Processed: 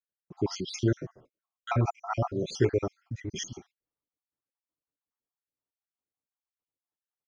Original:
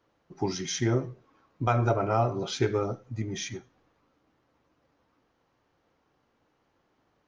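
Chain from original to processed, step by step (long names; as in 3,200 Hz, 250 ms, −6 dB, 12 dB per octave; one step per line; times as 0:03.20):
time-frequency cells dropped at random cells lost 58%
0:01.07–0:01.72: parametric band 600 Hz +6 dB 0.91 octaves
noise gate −58 dBFS, range −31 dB
level +2 dB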